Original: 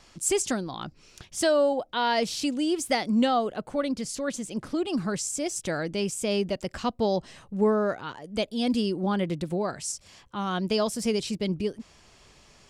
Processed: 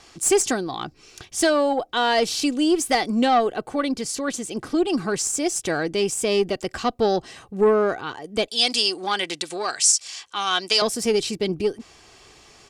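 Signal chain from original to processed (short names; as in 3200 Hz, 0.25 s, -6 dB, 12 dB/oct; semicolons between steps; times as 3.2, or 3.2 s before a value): low shelf 77 Hz -11.5 dB; comb 2.6 ms, depth 43%; tube stage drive 16 dB, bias 0.25; 8.48–10.82 weighting filter ITU-R 468; maximiser +12 dB; gain -5.5 dB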